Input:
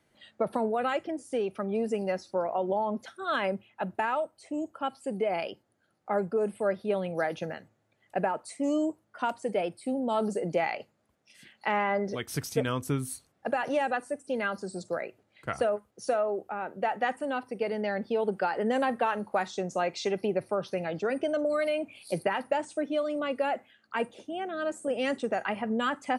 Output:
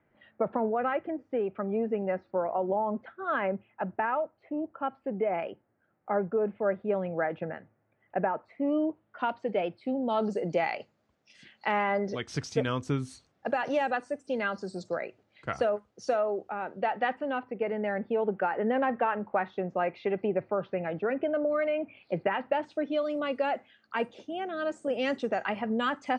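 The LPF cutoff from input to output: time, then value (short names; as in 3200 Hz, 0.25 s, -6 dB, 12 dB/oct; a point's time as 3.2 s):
LPF 24 dB/oct
8.58 s 2200 Hz
9.27 s 3700 Hz
9.88 s 3700 Hz
10.48 s 6400 Hz
16.61 s 6400 Hz
17.58 s 2500 Hz
22.11 s 2500 Hz
23.15 s 6100 Hz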